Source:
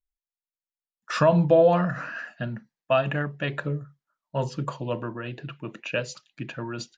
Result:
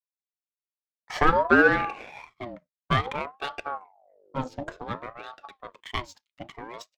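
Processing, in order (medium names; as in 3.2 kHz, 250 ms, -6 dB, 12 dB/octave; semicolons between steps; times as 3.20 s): 3.66–4.96 s: mains buzz 50 Hz, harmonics 3, -47 dBFS -9 dB/octave; power-law waveshaper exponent 1.4; ring modulator with a swept carrier 700 Hz, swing 45%, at 0.56 Hz; trim +4 dB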